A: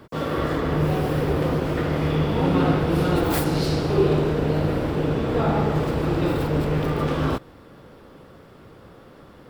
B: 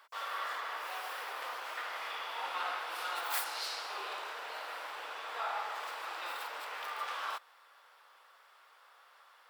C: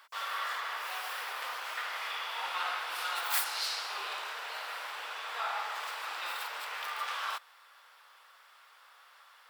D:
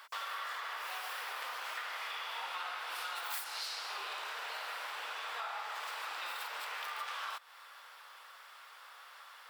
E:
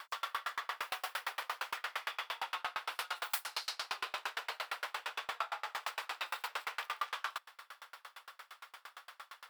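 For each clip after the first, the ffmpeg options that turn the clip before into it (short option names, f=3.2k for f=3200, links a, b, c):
-af "highpass=f=890:w=0.5412,highpass=f=890:w=1.3066,volume=-6dB"
-af "tiltshelf=f=790:g=-5.5"
-af "acompressor=threshold=-44dB:ratio=4,volume=4.5dB"
-af "aeval=exprs='val(0)*pow(10,-35*if(lt(mod(8.7*n/s,1),2*abs(8.7)/1000),1-mod(8.7*n/s,1)/(2*abs(8.7)/1000),(mod(8.7*n/s,1)-2*abs(8.7)/1000)/(1-2*abs(8.7)/1000))/20)':c=same,volume=9dB"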